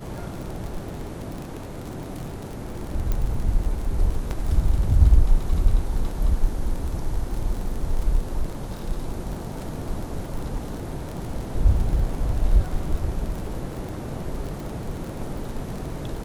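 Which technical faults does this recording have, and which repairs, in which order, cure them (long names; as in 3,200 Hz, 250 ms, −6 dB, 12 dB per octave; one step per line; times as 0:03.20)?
surface crackle 33 per second −29 dBFS
0:03.12: click −12 dBFS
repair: click removal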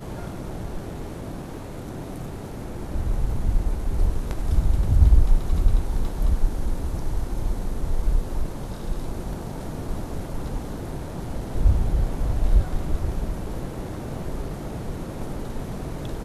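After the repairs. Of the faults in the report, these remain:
none of them is left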